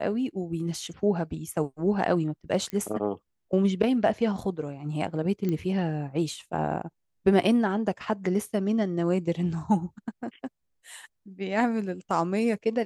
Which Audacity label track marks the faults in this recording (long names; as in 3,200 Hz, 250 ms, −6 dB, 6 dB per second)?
2.700000	2.700000	click −20 dBFS
5.490000	5.490000	click −18 dBFS